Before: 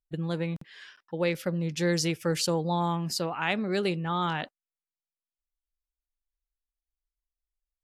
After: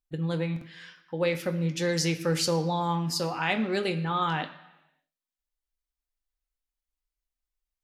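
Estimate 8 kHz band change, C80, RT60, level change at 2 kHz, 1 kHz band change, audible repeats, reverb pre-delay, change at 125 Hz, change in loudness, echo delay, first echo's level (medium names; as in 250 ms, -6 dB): +1.0 dB, 14.0 dB, 1.0 s, +1.0 dB, +1.5 dB, no echo, 3 ms, +1.0 dB, +1.0 dB, no echo, no echo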